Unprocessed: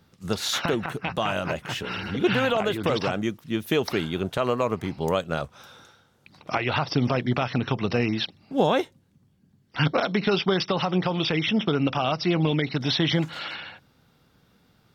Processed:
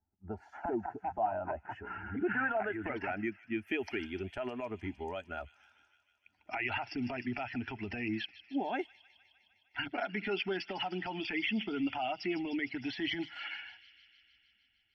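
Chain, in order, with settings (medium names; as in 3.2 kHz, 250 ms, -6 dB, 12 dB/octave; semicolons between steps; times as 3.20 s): expander on every frequency bin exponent 1.5; peak limiter -23.5 dBFS, peak gain reduction 11.5 dB; static phaser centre 760 Hz, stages 8; low-pass sweep 840 Hz -> 3.4 kHz, 1.28–4.07 s; feedback echo behind a high-pass 153 ms, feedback 75%, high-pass 3.4 kHz, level -11 dB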